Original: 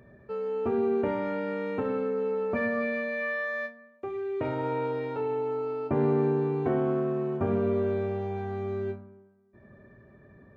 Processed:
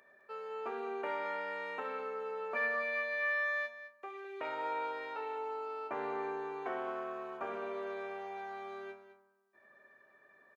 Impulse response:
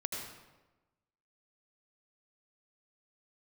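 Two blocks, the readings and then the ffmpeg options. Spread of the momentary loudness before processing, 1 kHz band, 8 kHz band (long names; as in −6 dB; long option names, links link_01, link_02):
8 LU, −2.5 dB, can't be measured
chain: -af "highpass=940,aecho=1:1:209:0.224"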